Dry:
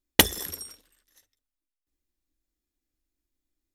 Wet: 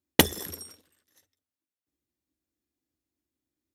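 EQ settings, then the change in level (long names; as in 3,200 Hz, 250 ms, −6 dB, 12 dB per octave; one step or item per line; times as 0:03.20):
high-pass filter 79 Hz 24 dB per octave
tilt shelving filter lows +3.5 dB, about 770 Hz
0.0 dB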